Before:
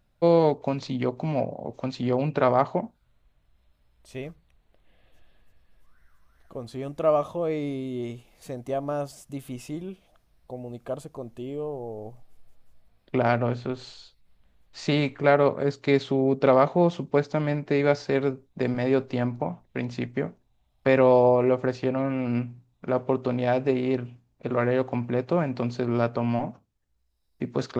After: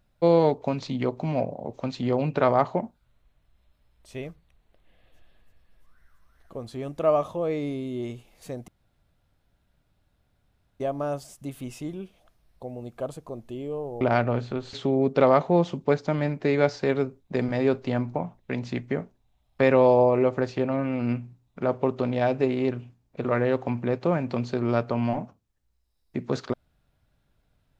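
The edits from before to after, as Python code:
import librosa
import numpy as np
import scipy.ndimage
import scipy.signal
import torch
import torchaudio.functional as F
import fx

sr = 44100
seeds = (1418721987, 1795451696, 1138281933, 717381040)

y = fx.edit(x, sr, fx.insert_room_tone(at_s=8.68, length_s=2.12),
    fx.cut(start_s=11.89, length_s=1.26),
    fx.cut(start_s=13.87, length_s=2.12), tone=tone)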